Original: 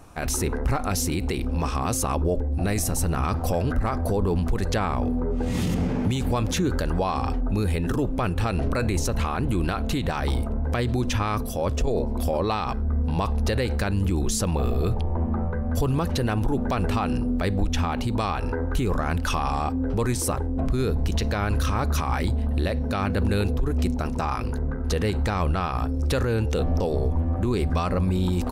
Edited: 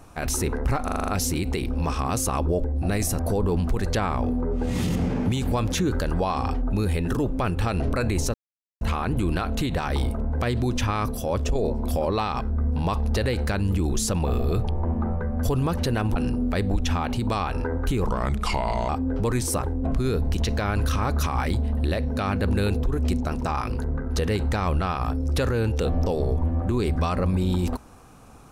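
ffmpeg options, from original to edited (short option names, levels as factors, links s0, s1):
-filter_complex "[0:a]asplit=12[s0][s1][s2][s3][s4][s5][s6][s7][s8][s9][s10][s11];[s0]atrim=end=0.882[s12];[s1]atrim=start=0.838:end=0.882[s13];[s2]atrim=start=0.838:end=0.882[s14];[s3]atrim=start=0.838:end=0.882[s15];[s4]atrim=start=0.838:end=0.882[s16];[s5]atrim=start=0.838:end=0.882[s17];[s6]atrim=start=0.838:end=2.952[s18];[s7]atrim=start=3.978:end=9.13,asetpts=PTS-STARTPTS,afade=t=out:st=5.148:d=0.004:c=hsin,apad=pad_dur=0.47[s19];[s8]atrim=start=9.13:end=16.482,asetpts=PTS-STARTPTS,afade=t=in:d=0.004:c=hsin[s20];[s9]atrim=start=17.038:end=18.944[s21];[s10]atrim=start=18.94:end=19.63,asetpts=PTS-STARTPTS,asetrate=36603,aresample=44100,atrim=end_sample=36661,asetpts=PTS-STARTPTS[s22];[s11]atrim=start=19.626[s23];[s12][s13]acrossfade=d=0.004:c1=hsin:c2=hsin[s24];[s24][s14]acrossfade=d=0.004:c1=hsin:c2=hsin[s25];[s25][s15]acrossfade=d=0.004:c1=hsin:c2=hsin[s26];[s26][s16]acrossfade=d=0.004:c1=hsin:c2=hsin[s27];[s27][s17]acrossfade=d=0.004:c1=hsin:c2=hsin[s28];[s28][s18]acrossfade=d=0.004:c1=hsin:c2=hsin[s29];[s19][s20]concat=n=2:v=0:a=1[s30];[s29][s30]acrossfade=d=0.004:c1=hsin:c2=hsin[s31];[s31][s21]acrossfade=d=0.004:c1=hsin:c2=hsin[s32];[s32][s22]acrossfade=d=0.004:c1=hsin:c2=hsin[s33];[s33][s23]acrossfade=d=0.004:c1=hsin:c2=hsin"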